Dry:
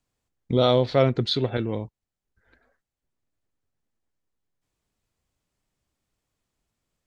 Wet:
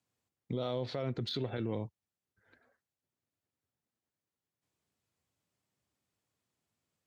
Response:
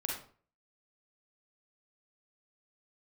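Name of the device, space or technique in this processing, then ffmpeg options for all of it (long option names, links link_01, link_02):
podcast mastering chain: -af "highpass=frequency=84:width=0.5412,highpass=frequency=84:width=1.3066,deesser=0.75,acompressor=threshold=-25dB:ratio=2,alimiter=limit=-21.5dB:level=0:latency=1:release=42,volume=-4dB" -ar 48000 -c:a libmp3lame -b:a 96k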